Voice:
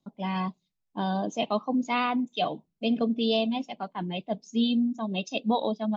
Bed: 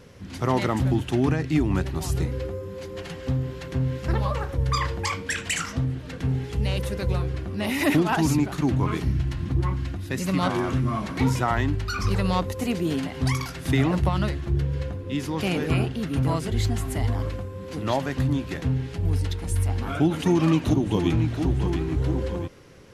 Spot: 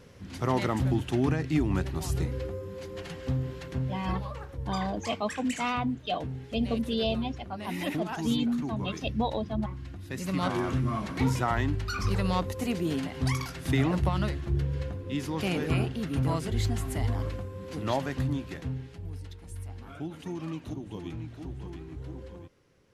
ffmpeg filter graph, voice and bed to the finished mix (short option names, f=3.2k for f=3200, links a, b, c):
-filter_complex "[0:a]adelay=3700,volume=-3.5dB[a];[1:a]volume=4dB,afade=t=out:st=3.53:d=0.75:silence=0.398107,afade=t=in:st=9.83:d=0.76:silence=0.398107,afade=t=out:st=18:d=1.11:silence=0.251189[b];[a][b]amix=inputs=2:normalize=0"